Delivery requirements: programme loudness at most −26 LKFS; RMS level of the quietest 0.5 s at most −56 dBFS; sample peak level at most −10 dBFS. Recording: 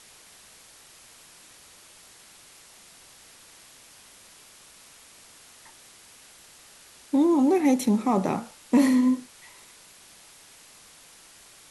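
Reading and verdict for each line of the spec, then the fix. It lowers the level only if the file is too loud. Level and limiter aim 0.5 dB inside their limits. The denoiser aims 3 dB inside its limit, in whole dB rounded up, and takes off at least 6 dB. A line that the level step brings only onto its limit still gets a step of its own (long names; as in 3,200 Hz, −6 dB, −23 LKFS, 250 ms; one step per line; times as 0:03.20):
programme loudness −23.0 LKFS: out of spec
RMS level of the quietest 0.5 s −52 dBFS: out of spec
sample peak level −9.0 dBFS: out of spec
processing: broadband denoise 6 dB, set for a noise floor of −52 dBFS
level −3.5 dB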